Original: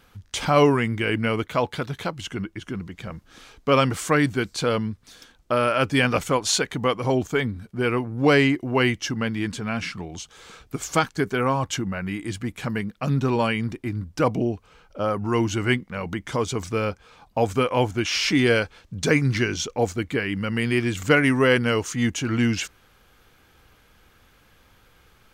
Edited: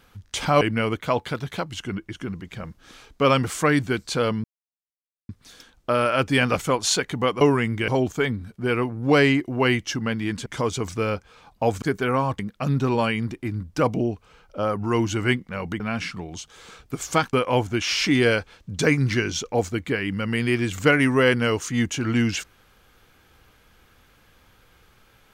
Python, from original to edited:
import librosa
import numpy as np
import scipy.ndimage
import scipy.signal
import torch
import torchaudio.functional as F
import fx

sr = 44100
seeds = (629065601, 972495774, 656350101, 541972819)

y = fx.edit(x, sr, fx.move(start_s=0.61, length_s=0.47, to_s=7.03),
    fx.insert_silence(at_s=4.91, length_s=0.85),
    fx.swap(start_s=9.61, length_s=1.53, other_s=16.21, other_length_s=1.36),
    fx.cut(start_s=11.71, length_s=1.09), tone=tone)